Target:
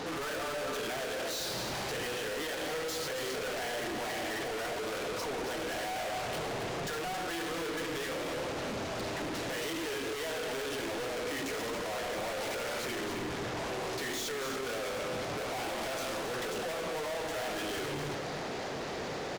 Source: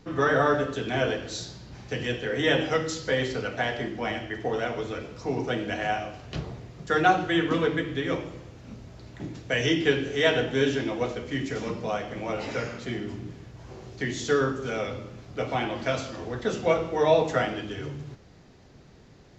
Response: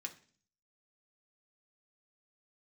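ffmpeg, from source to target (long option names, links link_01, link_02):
-filter_complex "[0:a]equalizer=frequency=590:width_type=o:width=1.6:gain=6.5,acompressor=threshold=-29dB:ratio=6,asplit=2[link_01][link_02];[link_02]highpass=frequency=720:poles=1,volume=27dB,asoftclip=type=tanh:threshold=-20dB[link_03];[link_01][link_03]amix=inputs=2:normalize=0,lowpass=frequency=4700:poles=1,volume=-6dB,asoftclip=type=hard:threshold=-38dB,aecho=1:1:272:0.398,volume=2dB"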